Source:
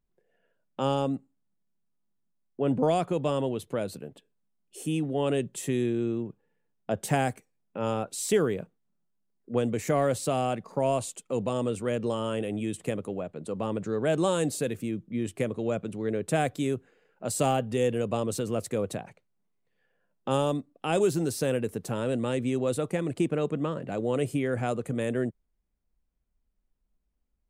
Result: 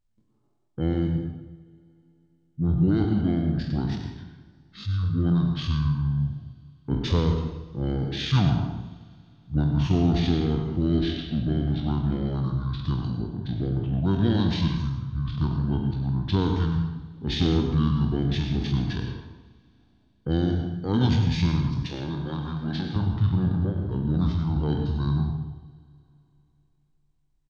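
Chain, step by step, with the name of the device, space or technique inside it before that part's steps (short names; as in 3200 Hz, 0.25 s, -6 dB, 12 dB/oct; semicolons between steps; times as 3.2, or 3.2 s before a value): spectral trails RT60 0.55 s; monster voice (pitch shift -8.5 st; formant shift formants -6 st; low shelf 190 Hz +4 dB; reverb RT60 0.90 s, pre-delay 91 ms, DRR 5 dB); 21.86–22.96 HPF 300 Hz 6 dB/oct; Schroeder reverb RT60 3.3 s, combs from 27 ms, DRR 20 dB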